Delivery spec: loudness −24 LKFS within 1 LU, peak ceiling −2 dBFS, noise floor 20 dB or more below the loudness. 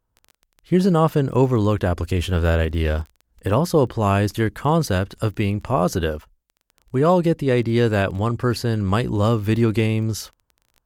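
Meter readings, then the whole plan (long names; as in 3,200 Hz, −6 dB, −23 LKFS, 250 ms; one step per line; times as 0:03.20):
crackle rate 19 per second; integrated loudness −20.5 LKFS; sample peak −6.0 dBFS; target loudness −24.0 LKFS
→ click removal
level −3.5 dB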